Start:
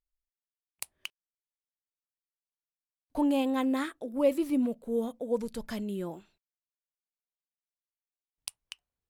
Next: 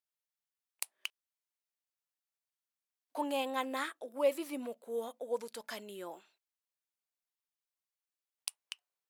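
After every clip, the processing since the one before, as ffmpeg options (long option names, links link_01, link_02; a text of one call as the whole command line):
ffmpeg -i in.wav -af "highpass=610" out.wav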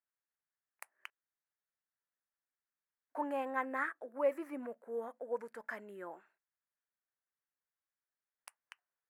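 ffmpeg -i in.wav -af "highshelf=frequency=2500:width_type=q:width=3:gain=-13,volume=-3dB" out.wav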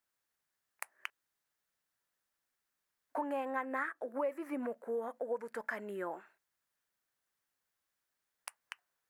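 ffmpeg -i in.wav -af "acompressor=threshold=-43dB:ratio=4,volume=8.5dB" out.wav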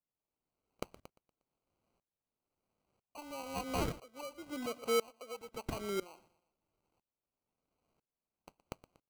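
ffmpeg -i in.wav -af "acrusher=samples=25:mix=1:aa=0.000001,aecho=1:1:119|238|357:0.1|0.032|0.0102,aeval=exprs='val(0)*pow(10,-24*if(lt(mod(-1*n/s,1),2*abs(-1)/1000),1-mod(-1*n/s,1)/(2*abs(-1)/1000),(mod(-1*n/s,1)-2*abs(-1)/1000)/(1-2*abs(-1)/1000))/20)':channel_layout=same,volume=7dB" out.wav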